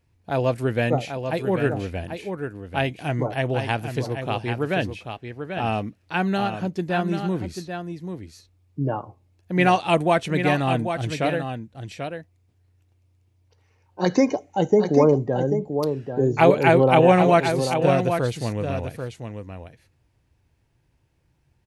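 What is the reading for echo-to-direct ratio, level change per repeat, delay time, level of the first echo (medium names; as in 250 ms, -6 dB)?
-7.5 dB, no regular repeats, 789 ms, -7.5 dB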